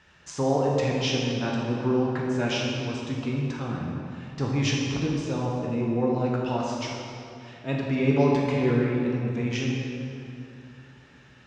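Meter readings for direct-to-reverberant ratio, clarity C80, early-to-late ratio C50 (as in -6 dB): -3.0 dB, 1.0 dB, -0.5 dB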